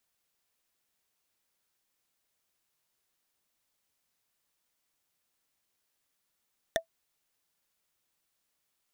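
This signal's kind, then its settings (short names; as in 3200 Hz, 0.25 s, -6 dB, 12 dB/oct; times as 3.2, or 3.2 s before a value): wood hit, lowest mode 659 Hz, decay 0.10 s, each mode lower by 1 dB, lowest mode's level -20 dB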